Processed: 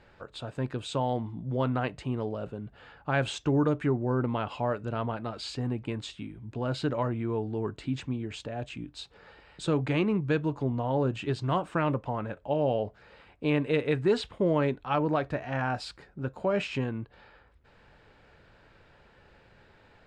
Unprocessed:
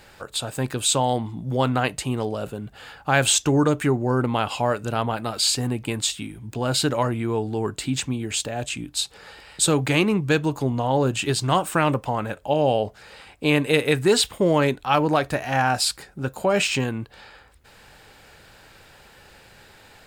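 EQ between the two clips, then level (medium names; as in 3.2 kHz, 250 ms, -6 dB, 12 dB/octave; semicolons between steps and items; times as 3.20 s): tape spacing loss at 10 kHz 27 dB; band-stop 790 Hz, Q 14; -5.0 dB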